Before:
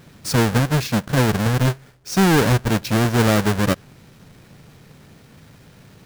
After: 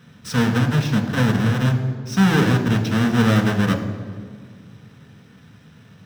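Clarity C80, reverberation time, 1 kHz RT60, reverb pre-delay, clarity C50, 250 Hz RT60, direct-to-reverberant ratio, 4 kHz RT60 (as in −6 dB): 10.0 dB, 1.8 s, 1.7 s, 3 ms, 8.5 dB, 2.3 s, 3.5 dB, 1.3 s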